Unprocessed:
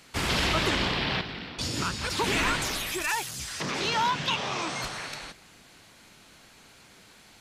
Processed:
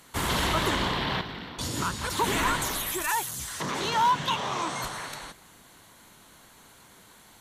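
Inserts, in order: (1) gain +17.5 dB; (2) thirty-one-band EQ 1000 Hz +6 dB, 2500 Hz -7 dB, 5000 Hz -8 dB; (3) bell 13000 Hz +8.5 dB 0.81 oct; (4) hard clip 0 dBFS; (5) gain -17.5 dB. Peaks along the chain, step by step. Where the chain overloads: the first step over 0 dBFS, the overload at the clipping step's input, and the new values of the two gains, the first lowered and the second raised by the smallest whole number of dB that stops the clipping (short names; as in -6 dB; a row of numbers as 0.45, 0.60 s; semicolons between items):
+2.5, +5.0, +5.0, 0.0, -17.5 dBFS; step 1, 5.0 dB; step 1 +12.5 dB, step 5 -12.5 dB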